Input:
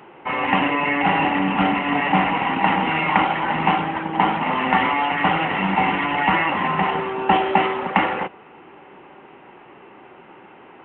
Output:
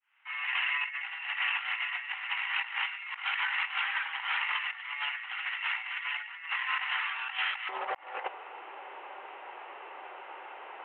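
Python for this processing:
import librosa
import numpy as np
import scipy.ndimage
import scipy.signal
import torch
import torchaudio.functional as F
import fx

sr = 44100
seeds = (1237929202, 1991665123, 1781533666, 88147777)

y = fx.fade_in_head(x, sr, length_s=1.14)
y = fx.highpass(y, sr, hz=fx.steps((0.0, 1500.0), (7.69, 530.0)), slope=24)
y = fx.over_compress(y, sr, threshold_db=-31.0, ratio=-0.5)
y = F.gain(torch.from_numpy(y), -2.5).numpy()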